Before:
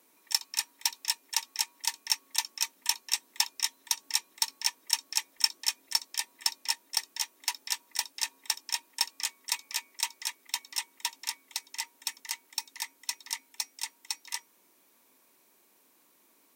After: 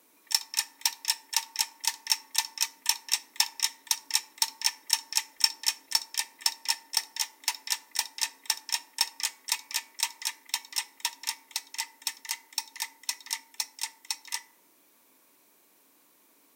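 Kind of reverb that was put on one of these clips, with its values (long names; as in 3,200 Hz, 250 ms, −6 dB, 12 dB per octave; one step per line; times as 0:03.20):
feedback delay network reverb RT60 0.65 s, high-frequency decay 0.5×, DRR 12.5 dB
level +2 dB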